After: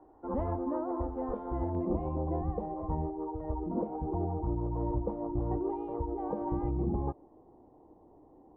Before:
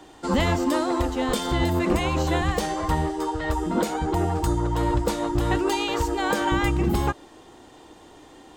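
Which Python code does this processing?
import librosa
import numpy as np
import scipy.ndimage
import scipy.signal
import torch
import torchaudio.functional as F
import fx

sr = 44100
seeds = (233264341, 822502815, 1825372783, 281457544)

y = scipy.signal.sosfilt(scipy.signal.butter(4, 1000.0, 'lowpass', fs=sr, output='sos'), x)
y = fx.peak_eq(y, sr, hz=fx.steps((0.0, 160.0), (1.75, 1500.0)), db=-13.0, octaves=0.63)
y = y * librosa.db_to_amplitude(-8.5)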